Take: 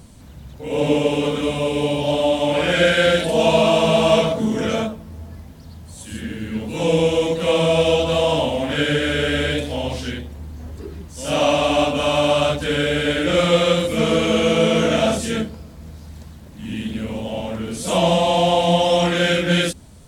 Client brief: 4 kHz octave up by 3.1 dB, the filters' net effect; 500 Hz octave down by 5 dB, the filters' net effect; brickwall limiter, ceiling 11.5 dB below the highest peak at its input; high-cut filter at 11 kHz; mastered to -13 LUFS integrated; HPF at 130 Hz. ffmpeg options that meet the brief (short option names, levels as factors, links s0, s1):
-af "highpass=130,lowpass=11000,equalizer=f=500:t=o:g=-6,equalizer=f=4000:t=o:g=4.5,volume=3.76,alimiter=limit=0.631:level=0:latency=1"